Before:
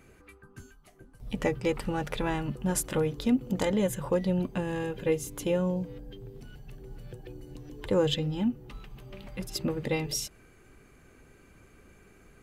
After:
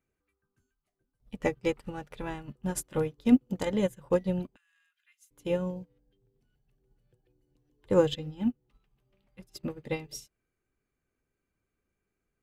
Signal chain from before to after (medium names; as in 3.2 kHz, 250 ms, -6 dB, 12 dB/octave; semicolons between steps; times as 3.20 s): 4.56–5.31 s: steep high-pass 1.3 kHz 48 dB/octave; upward expansion 2.5:1, over -42 dBFS; trim +6 dB